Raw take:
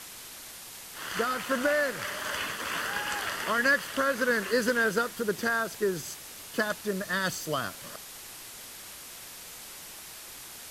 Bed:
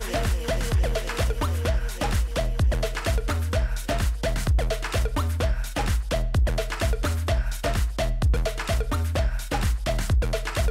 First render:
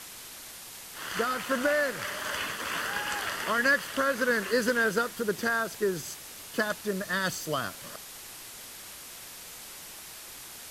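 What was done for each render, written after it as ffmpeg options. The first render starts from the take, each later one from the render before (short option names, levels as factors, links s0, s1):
-af anull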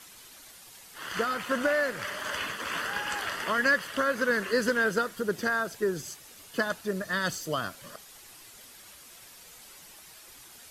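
-af "afftdn=nr=8:nf=-45"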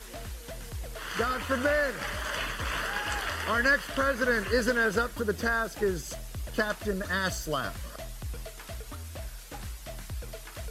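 -filter_complex "[1:a]volume=0.158[s0];[0:a][s0]amix=inputs=2:normalize=0"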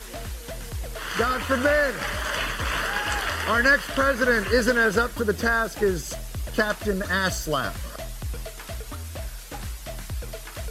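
-af "volume=1.88"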